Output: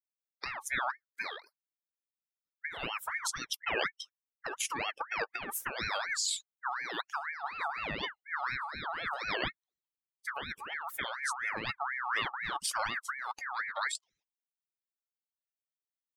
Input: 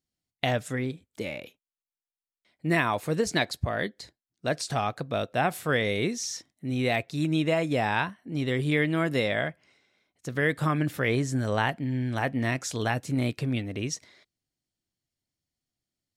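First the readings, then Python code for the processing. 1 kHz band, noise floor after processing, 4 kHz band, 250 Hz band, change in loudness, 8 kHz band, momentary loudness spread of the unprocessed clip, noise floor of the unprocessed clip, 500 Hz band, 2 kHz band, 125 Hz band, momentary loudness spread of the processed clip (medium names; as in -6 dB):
-4.0 dB, under -85 dBFS, -3.0 dB, -22.0 dB, -7.5 dB, -0.5 dB, 10 LU, under -85 dBFS, -15.0 dB, -4.0 dB, -24.5 dB, 7 LU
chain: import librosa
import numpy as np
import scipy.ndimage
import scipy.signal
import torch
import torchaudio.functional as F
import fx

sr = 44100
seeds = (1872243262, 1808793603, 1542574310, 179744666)

y = fx.bin_expand(x, sr, power=2.0)
y = fx.low_shelf(y, sr, hz=77.0, db=6.0)
y = fx.over_compress(y, sr, threshold_db=-38.0, ratio=-1.0)
y = fx.ring_lfo(y, sr, carrier_hz=1500.0, swing_pct=35, hz=4.1)
y = F.gain(torch.from_numpy(y), 4.5).numpy()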